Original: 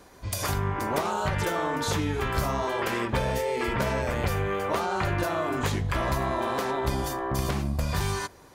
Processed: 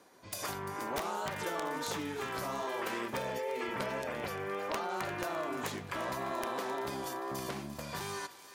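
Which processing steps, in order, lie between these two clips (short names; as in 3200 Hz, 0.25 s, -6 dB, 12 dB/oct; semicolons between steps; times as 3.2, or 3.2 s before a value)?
HPF 210 Hz 12 dB/oct; wrapped overs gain 16.5 dB; 3.21–4.9 spectral gate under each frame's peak -30 dB strong; thinning echo 0.345 s, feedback 84%, high-pass 1100 Hz, level -13.5 dB; wow and flutter 27 cents; gain -8 dB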